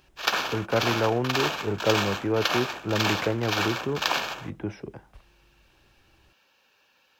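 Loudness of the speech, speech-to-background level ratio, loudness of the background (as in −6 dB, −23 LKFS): −28.5 LKFS, −0.5 dB, −28.0 LKFS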